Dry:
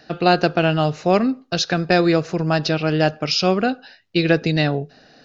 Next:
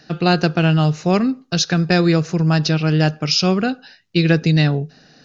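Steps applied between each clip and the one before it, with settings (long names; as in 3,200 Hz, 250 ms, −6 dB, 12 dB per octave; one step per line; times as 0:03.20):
graphic EQ with 15 bands 160 Hz +7 dB, 630 Hz −5 dB, 6,300 Hz +6 dB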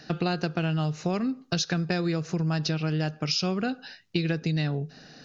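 downward compressor 5 to 1, threshold −25 dBFS, peak gain reduction 14 dB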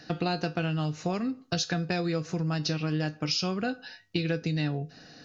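tuned comb filter 100 Hz, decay 0.22 s, harmonics odd, mix 70%
level +6 dB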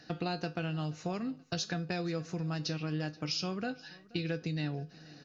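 repeating echo 479 ms, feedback 44%, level −22.5 dB
level −6 dB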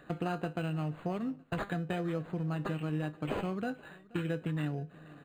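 linearly interpolated sample-rate reduction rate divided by 8×
level +1 dB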